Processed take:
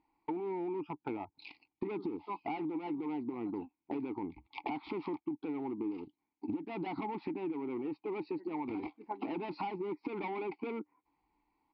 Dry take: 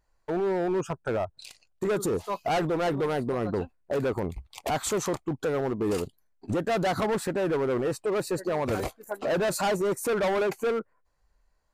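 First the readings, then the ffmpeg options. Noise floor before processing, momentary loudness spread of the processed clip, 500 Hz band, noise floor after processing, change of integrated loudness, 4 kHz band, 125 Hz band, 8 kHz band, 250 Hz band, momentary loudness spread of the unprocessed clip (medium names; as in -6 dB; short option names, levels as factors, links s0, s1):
-69 dBFS, 6 LU, -14.0 dB, under -85 dBFS, -11.0 dB, -17.5 dB, -17.0 dB, under -40 dB, -6.0 dB, 7 LU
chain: -filter_complex "[0:a]aresample=11025,aresample=44100,asplit=3[s0][s1][s2];[s0]bandpass=f=300:t=q:w=8,volume=1[s3];[s1]bandpass=f=870:t=q:w=8,volume=0.501[s4];[s2]bandpass=f=2240:t=q:w=8,volume=0.355[s5];[s3][s4][s5]amix=inputs=3:normalize=0,acompressor=threshold=0.00316:ratio=10,volume=5.62"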